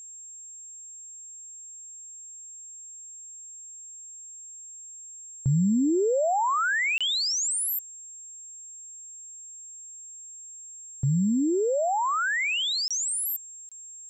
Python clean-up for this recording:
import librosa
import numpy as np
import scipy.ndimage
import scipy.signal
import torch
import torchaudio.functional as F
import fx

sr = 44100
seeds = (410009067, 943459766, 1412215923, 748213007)

y = fx.notch(x, sr, hz=7500.0, q=30.0)
y = fx.fix_interpolate(y, sr, at_s=(6.98, 12.88, 13.69), length_ms=26.0)